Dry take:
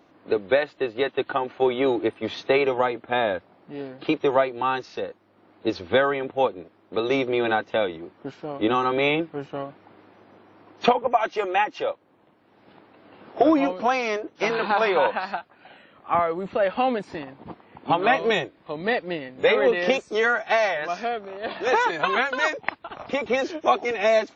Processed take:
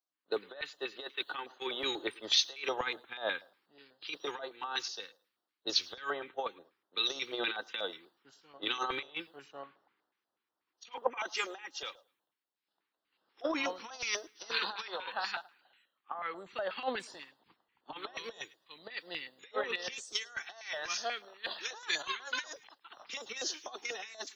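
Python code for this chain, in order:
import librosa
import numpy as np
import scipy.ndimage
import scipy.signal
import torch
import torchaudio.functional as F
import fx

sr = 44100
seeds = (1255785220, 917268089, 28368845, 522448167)

y = np.diff(x, prepend=0.0)
y = fx.over_compress(y, sr, threshold_db=-41.0, ratio=-0.5)
y = fx.echo_feedback(y, sr, ms=109, feedback_pct=30, wet_db=-20)
y = fx.filter_lfo_notch(y, sr, shape='square', hz=4.1, low_hz=640.0, high_hz=2300.0, q=0.9)
y = fx.band_widen(y, sr, depth_pct=100)
y = F.gain(torch.from_numpy(y), 6.5).numpy()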